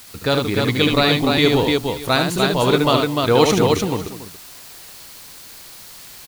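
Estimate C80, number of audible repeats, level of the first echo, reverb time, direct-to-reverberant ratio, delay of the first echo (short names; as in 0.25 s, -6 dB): none, 4, -5.0 dB, none, none, 73 ms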